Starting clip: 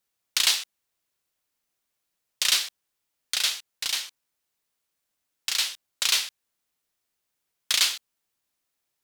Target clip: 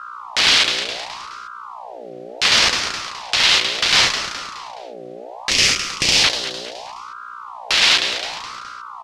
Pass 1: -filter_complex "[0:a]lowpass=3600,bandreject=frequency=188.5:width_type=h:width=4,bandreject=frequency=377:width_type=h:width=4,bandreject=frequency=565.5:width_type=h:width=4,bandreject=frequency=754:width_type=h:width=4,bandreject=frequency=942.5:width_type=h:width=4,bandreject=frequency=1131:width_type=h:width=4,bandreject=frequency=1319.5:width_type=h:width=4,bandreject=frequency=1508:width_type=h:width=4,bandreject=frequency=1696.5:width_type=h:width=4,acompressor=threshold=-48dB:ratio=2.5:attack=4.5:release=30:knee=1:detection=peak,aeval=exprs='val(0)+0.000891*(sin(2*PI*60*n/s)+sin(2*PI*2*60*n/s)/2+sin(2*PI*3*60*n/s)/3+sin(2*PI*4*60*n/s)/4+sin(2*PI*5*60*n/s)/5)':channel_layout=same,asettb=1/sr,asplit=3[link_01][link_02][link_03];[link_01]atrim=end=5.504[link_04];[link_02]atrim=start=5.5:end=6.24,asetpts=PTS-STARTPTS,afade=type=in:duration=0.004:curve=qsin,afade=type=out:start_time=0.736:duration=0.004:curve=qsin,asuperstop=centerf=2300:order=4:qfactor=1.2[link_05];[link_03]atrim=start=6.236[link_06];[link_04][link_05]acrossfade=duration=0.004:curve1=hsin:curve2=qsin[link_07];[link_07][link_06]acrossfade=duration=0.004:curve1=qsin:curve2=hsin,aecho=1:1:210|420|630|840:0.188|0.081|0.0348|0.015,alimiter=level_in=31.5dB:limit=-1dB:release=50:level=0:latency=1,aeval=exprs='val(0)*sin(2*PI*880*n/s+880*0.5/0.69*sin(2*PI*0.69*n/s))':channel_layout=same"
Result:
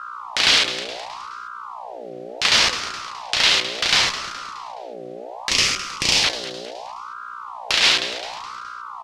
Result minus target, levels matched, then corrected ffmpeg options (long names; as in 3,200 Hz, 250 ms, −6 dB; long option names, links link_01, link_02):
downward compressor: peak gain reduction +6.5 dB
-filter_complex "[0:a]lowpass=3600,bandreject=frequency=188.5:width_type=h:width=4,bandreject=frequency=377:width_type=h:width=4,bandreject=frequency=565.5:width_type=h:width=4,bandreject=frequency=754:width_type=h:width=4,bandreject=frequency=942.5:width_type=h:width=4,bandreject=frequency=1131:width_type=h:width=4,bandreject=frequency=1319.5:width_type=h:width=4,bandreject=frequency=1508:width_type=h:width=4,bandreject=frequency=1696.5:width_type=h:width=4,acompressor=threshold=-37dB:ratio=2.5:attack=4.5:release=30:knee=1:detection=peak,aeval=exprs='val(0)+0.000891*(sin(2*PI*60*n/s)+sin(2*PI*2*60*n/s)/2+sin(2*PI*3*60*n/s)/3+sin(2*PI*4*60*n/s)/4+sin(2*PI*5*60*n/s)/5)':channel_layout=same,asettb=1/sr,asplit=3[link_01][link_02][link_03];[link_01]atrim=end=5.504[link_04];[link_02]atrim=start=5.5:end=6.24,asetpts=PTS-STARTPTS,afade=type=in:duration=0.004:curve=qsin,afade=type=out:start_time=0.736:duration=0.004:curve=qsin,asuperstop=centerf=2300:order=4:qfactor=1.2[link_05];[link_03]atrim=start=6.236[link_06];[link_04][link_05]acrossfade=duration=0.004:curve1=hsin:curve2=qsin[link_07];[link_07][link_06]acrossfade=duration=0.004:curve1=qsin:curve2=hsin,aecho=1:1:210|420|630|840:0.188|0.081|0.0348|0.015,alimiter=level_in=31.5dB:limit=-1dB:release=50:level=0:latency=1,aeval=exprs='val(0)*sin(2*PI*880*n/s+880*0.5/0.69*sin(2*PI*0.69*n/s))':channel_layout=same"